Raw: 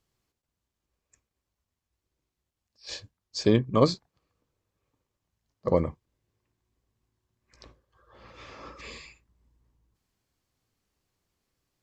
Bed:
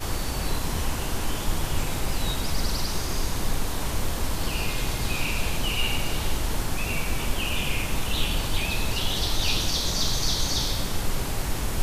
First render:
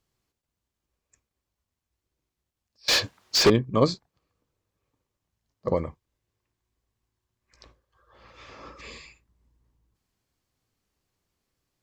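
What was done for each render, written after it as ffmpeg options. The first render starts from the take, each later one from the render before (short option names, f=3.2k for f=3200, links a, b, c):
-filter_complex "[0:a]asettb=1/sr,asplit=3[a][b][c];[a]atrim=end=2.884[d];[b]atrim=start=2.88:end=3.5,asetpts=PTS-STARTPTS,afade=t=in:d=0.004:c=qsin,afade=t=out:st=0.616:d=0.004:c=qsin,asplit=2[e][f];[f]highpass=f=720:p=1,volume=35dB,asoftclip=type=tanh:threshold=-8dB[g];[e][g]amix=inputs=2:normalize=0,lowpass=f=3.1k:p=1,volume=-6dB[h];[c]atrim=start=3.496[i];[d][h]acrossfade=d=0.004:c1=hsin:c2=qsin[j];[j][i]acrossfade=d=0.004:c1=qsin:c2=hsin,asettb=1/sr,asplit=3[k][l][m];[k]atrim=end=5.744[n];[l]atrim=start=5.74:end=8.49,asetpts=PTS-STARTPTS,afade=t=in:d=0.004:c=qsin,afade=t=out:st=2.746:d=0.004:c=qsin,equalizer=f=200:t=o:w=2.9:g=-5[o];[m]atrim=start=8.486[p];[n][o]acrossfade=d=0.004:c1=hsin:c2=qsin[q];[q][p]acrossfade=d=0.004:c1=qsin:c2=hsin"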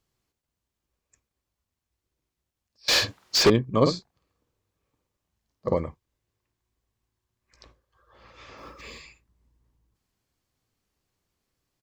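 -filter_complex "[0:a]asettb=1/sr,asplit=3[a][b][c];[a]atrim=end=2.914[d];[b]atrim=start=2.91:end=3.35,asetpts=PTS-STARTPTS,afade=t=in:d=0.004:c=qsin,afade=t=out:st=0.436:d=0.004:c=qsin,asplit=2[e][f];[f]adelay=47,volume=-5dB[g];[e][g]amix=inputs=2:normalize=0,atrim=end_sample=19404[h];[c]atrim=start=3.346[i];[d][h]acrossfade=d=0.004:c1=hsin:c2=qsin[j];[j][i]acrossfade=d=0.004:c1=qsin:c2=hsin,asplit=3[k][l][m];[k]afade=t=out:st=3.85:d=0.02[n];[l]asplit=2[o][p];[p]adelay=50,volume=-6dB[q];[o][q]amix=inputs=2:normalize=0,afade=t=in:st=3.85:d=0.02,afade=t=out:st=5.76:d=0.02[r];[m]afade=t=in:st=5.76:d=0.02[s];[n][r][s]amix=inputs=3:normalize=0,asettb=1/sr,asplit=3[t][u][v];[t]atrim=end=8.574[w];[u]atrim=start=8.57:end=9.02,asetpts=PTS-STARTPTS,afade=t=in:d=0.004:c=qsin,afade=t=out:st=0.446:d=0.004:c=qsin,acrusher=bits=7:mode=log:mix=0:aa=0.000001[x];[v]atrim=start=9.016[y];[w][x]acrossfade=d=0.004:c1=hsin:c2=qsin[z];[z][y]acrossfade=d=0.004:c1=qsin:c2=hsin"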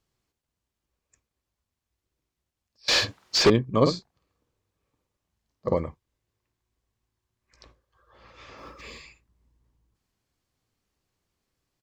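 -filter_complex "[0:a]acrossover=split=8400[a][b];[b]acompressor=threshold=-43dB:ratio=4:attack=1:release=60[c];[a][c]amix=inputs=2:normalize=0,highshelf=f=12k:g=-5.5"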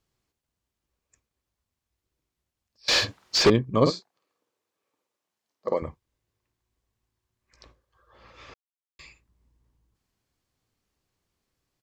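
-filter_complex "[0:a]asettb=1/sr,asplit=3[a][b][c];[a]atrim=end=3.904[d];[b]atrim=start=3.9:end=5.82,asetpts=PTS-STARTPTS,afade=t=in:d=0.004:c=qsin,afade=t=out:st=1.916:d=0.004:c=qsin,highpass=350[e];[c]atrim=start=5.816[f];[d][e]acrossfade=d=0.004:c1=hsin:c2=qsin[g];[g][f]acrossfade=d=0.004:c1=qsin:c2=hsin,asplit=3[h][i][j];[h]atrim=end=8.54,asetpts=PTS-STARTPTS,afade=t=out:st=8.536:d=0.004:c=hsin[k];[i]atrim=start=8.54:end=8.99,asetpts=PTS-STARTPTS,volume=0[l];[j]atrim=start=8.99,asetpts=PTS-STARTPTS,afade=t=in:d=0.004:c=hsin[m];[k][l][m]concat=n=3:v=0:a=1"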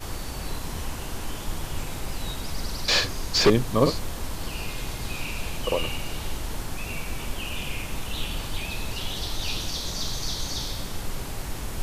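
-filter_complex "[1:a]volume=-5dB[a];[0:a][a]amix=inputs=2:normalize=0"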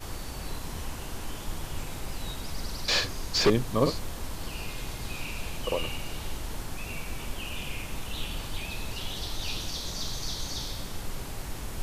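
-af "volume=-4dB"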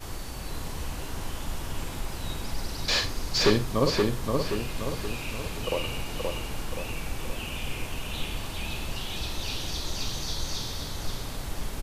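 -filter_complex "[0:a]asplit=2[a][b];[b]adelay=48,volume=-12dB[c];[a][c]amix=inputs=2:normalize=0,asplit=2[d][e];[e]adelay=525,lowpass=f=4k:p=1,volume=-3dB,asplit=2[f][g];[g]adelay=525,lowpass=f=4k:p=1,volume=0.49,asplit=2[h][i];[i]adelay=525,lowpass=f=4k:p=1,volume=0.49,asplit=2[j][k];[k]adelay=525,lowpass=f=4k:p=1,volume=0.49,asplit=2[l][m];[m]adelay=525,lowpass=f=4k:p=1,volume=0.49,asplit=2[n][o];[o]adelay=525,lowpass=f=4k:p=1,volume=0.49[p];[f][h][j][l][n][p]amix=inputs=6:normalize=0[q];[d][q]amix=inputs=2:normalize=0"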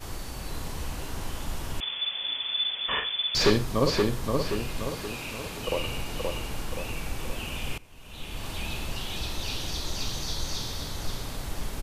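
-filter_complex "[0:a]asettb=1/sr,asplit=3[a][b][c];[a]atrim=end=1.804[d];[b]atrim=start=1.8:end=3.35,asetpts=PTS-STARTPTS,afade=t=in:d=0.004:c=qsin,afade=t=out:st=1.546:d=0.004:c=qsin,lowpass=f=3k:t=q:w=0.5098,lowpass=f=3k:t=q:w=0.6013,lowpass=f=3k:t=q:w=0.9,lowpass=f=3k:t=q:w=2.563,afreqshift=-3500[e];[c]atrim=start=3.346[f];[d][e]acrossfade=d=0.004:c1=hsin:c2=qsin[g];[g][f]acrossfade=d=0.004:c1=qsin:c2=hsin,asettb=1/sr,asplit=3[h][i][j];[h]atrim=end=4.874[k];[i]atrim=start=4.87:end=5.68,asetpts=PTS-STARTPTS,afade=t=in:d=0.004:c=qsin,afade=t=out:st=0.806:d=0.004:c=qsin,lowshelf=f=78:g=-11.5[l];[j]atrim=start=5.676[m];[k][l]acrossfade=d=0.004:c1=hsin:c2=qsin[n];[n][m]acrossfade=d=0.004:c1=qsin:c2=hsin,asplit=2[o][p];[o]atrim=end=7.78,asetpts=PTS-STARTPTS,afade=t=out:st=7.776:d=0.004:c=hsin:silence=0.1[q];[p]atrim=start=7.78,asetpts=PTS-STARTPTS,afade=t=in:d=0.71:c=qua:silence=0.1[r];[q][r]concat=n=2:v=0:a=1"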